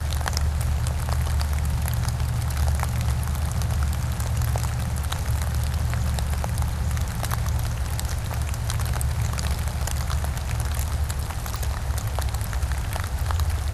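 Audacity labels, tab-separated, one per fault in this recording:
11.560000	11.560000	pop

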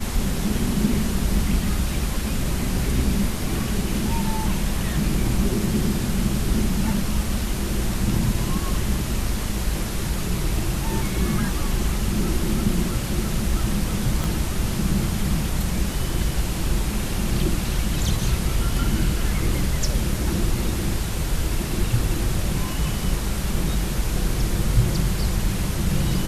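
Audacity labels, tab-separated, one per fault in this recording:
14.240000	14.240000	pop

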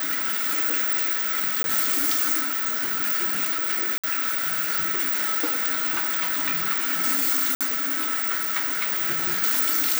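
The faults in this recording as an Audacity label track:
1.630000	1.640000	gap 12 ms
3.980000	4.040000	gap 56 ms
7.550000	7.610000	gap 57 ms

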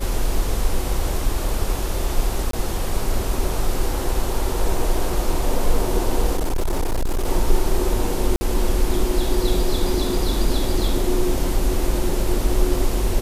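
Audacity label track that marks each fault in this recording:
2.510000	2.530000	gap 23 ms
6.360000	7.280000	clipped -17 dBFS
8.360000	8.410000	gap 50 ms

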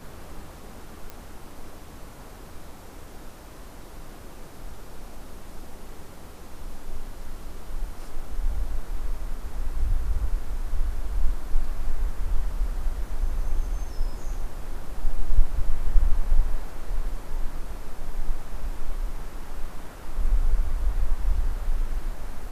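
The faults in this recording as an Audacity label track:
1.100000	1.100000	pop -21 dBFS

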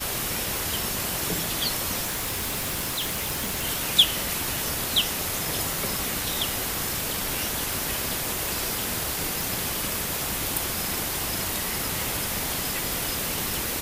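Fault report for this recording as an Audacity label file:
2.040000	3.650000	clipped -24.5 dBFS
7.730000	7.730000	pop
9.410000	9.410000	pop

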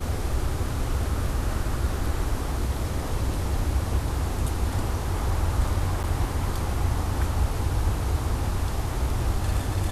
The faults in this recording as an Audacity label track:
6.030000	6.040000	gap 8.8 ms

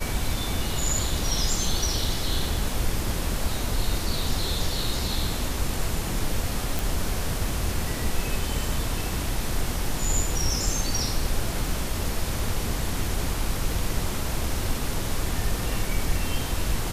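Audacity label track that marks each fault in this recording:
6.790000	6.790000	pop

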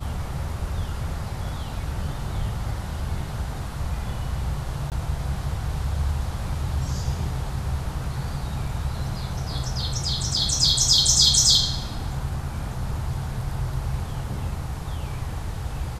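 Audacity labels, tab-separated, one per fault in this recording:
4.900000	4.920000	gap 18 ms

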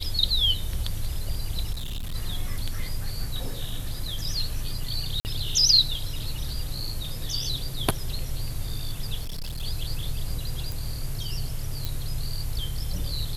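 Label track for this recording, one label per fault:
1.720000	2.150000	clipped -28 dBFS
3.940000	3.940000	gap 3.2 ms
5.200000	5.250000	gap 49 ms
9.210000	9.630000	clipped -28.5 dBFS
10.720000	10.720000	pop
11.850000	11.850000	pop

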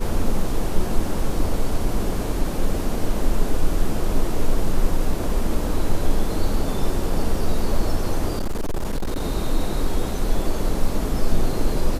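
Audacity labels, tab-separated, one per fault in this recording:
8.370000	9.220000	clipped -19.5 dBFS

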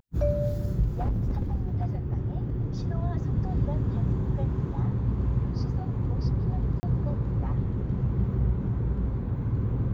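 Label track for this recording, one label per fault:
0.970000	2.910000	clipped -22.5 dBFS
6.800000	6.830000	gap 30 ms

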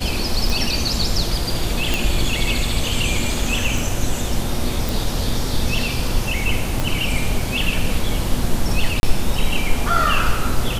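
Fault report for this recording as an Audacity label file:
0.500000	0.500000	pop
1.940000	1.940000	pop
3.780000	3.780000	gap 3.3 ms
4.890000	4.890000	pop
6.800000	6.800000	pop -7 dBFS
9.000000	9.030000	gap 31 ms

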